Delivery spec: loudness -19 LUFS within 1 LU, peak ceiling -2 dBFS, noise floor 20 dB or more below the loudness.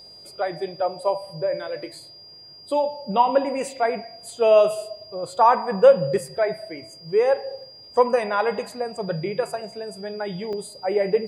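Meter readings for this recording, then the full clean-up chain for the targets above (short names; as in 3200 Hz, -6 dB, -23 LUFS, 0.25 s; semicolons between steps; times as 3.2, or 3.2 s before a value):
dropouts 1; longest dropout 2.0 ms; steady tone 4800 Hz; tone level -43 dBFS; loudness -22.5 LUFS; peak -3.0 dBFS; loudness target -19.0 LUFS
-> interpolate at 10.53, 2 ms; notch 4800 Hz, Q 30; gain +3.5 dB; limiter -2 dBFS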